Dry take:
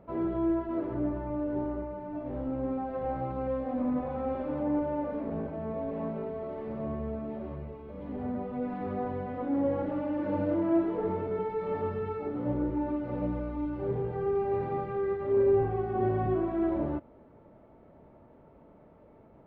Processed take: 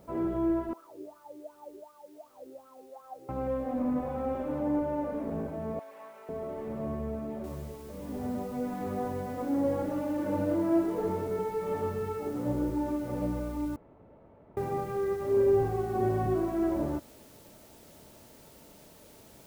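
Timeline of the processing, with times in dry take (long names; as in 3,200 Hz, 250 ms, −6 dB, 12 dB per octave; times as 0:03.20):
0:00.73–0:03.29: LFO wah 2.7 Hz 370–1,300 Hz, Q 11
0:05.79–0:06.29: high-pass filter 1,200 Hz
0:07.44: noise floor change −69 dB −58 dB
0:13.76–0:14.57: fill with room tone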